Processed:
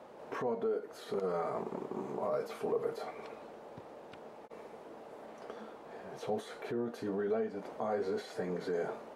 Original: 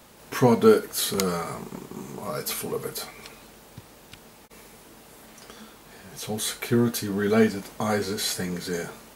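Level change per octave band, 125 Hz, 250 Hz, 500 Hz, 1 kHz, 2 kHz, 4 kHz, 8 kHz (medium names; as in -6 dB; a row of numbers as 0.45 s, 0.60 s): -17.5 dB, -15.0 dB, -9.0 dB, -8.5 dB, -14.0 dB, -21.5 dB, -27.5 dB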